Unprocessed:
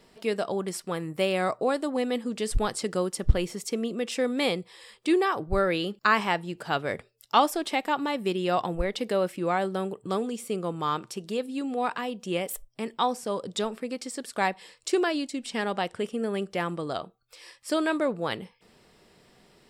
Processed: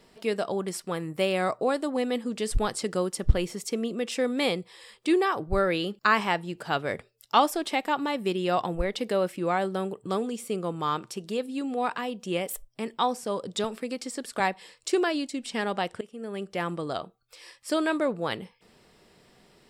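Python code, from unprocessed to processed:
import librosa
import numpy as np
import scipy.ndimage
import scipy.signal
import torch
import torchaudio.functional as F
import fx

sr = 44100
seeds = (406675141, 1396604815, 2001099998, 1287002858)

y = fx.band_squash(x, sr, depth_pct=40, at=(13.64, 14.4))
y = fx.edit(y, sr, fx.fade_in_from(start_s=16.01, length_s=0.68, floor_db=-18.0), tone=tone)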